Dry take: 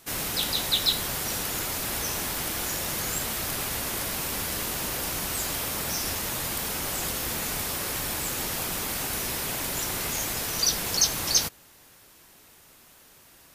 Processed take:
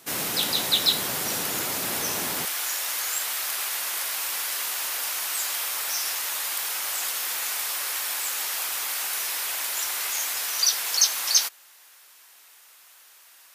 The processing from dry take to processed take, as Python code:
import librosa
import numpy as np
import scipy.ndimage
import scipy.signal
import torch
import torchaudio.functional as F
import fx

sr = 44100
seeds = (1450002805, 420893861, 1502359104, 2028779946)

y = fx.highpass(x, sr, hz=fx.steps((0.0, 160.0), (2.45, 1000.0)), slope=12)
y = F.gain(torch.from_numpy(y), 2.5).numpy()